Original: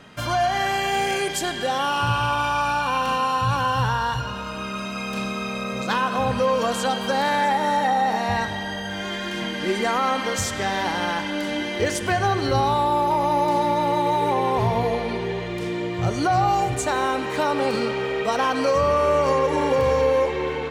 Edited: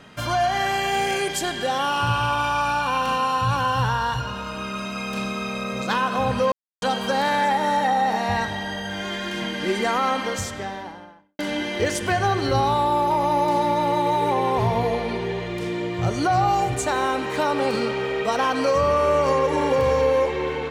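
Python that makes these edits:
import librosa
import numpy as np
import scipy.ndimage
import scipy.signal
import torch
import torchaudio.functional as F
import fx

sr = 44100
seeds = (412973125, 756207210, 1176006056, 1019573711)

y = fx.studio_fade_out(x, sr, start_s=10.03, length_s=1.36)
y = fx.edit(y, sr, fx.silence(start_s=6.52, length_s=0.3), tone=tone)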